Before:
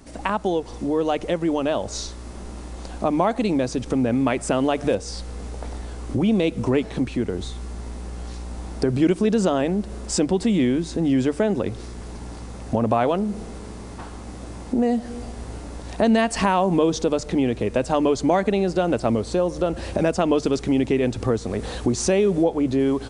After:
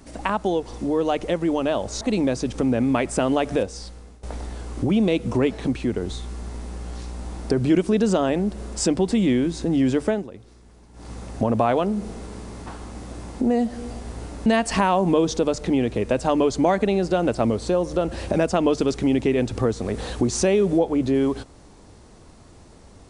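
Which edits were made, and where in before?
0:02.01–0:03.33: remove
0:04.81–0:05.55: fade out, to −20.5 dB
0:11.40–0:12.44: duck −15 dB, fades 0.19 s
0:15.78–0:16.11: remove

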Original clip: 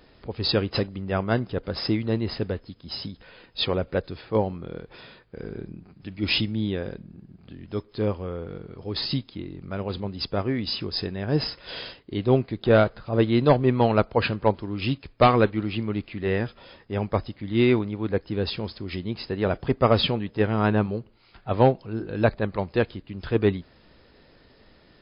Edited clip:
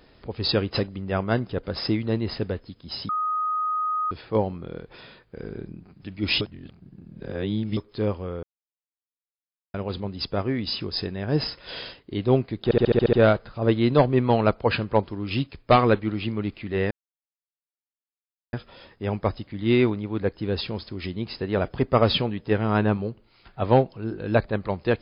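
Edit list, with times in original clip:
0:03.09–0:04.11: beep over 1,250 Hz −22.5 dBFS
0:06.41–0:07.77: reverse
0:08.43–0:09.74: silence
0:12.64: stutter 0.07 s, 8 plays
0:16.42: splice in silence 1.62 s

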